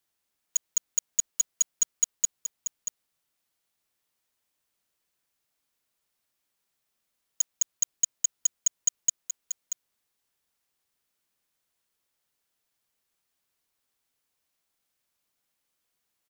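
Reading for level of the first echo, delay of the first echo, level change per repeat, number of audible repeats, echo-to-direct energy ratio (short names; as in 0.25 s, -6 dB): -7.5 dB, 0.634 s, no steady repeat, 1, -7.5 dB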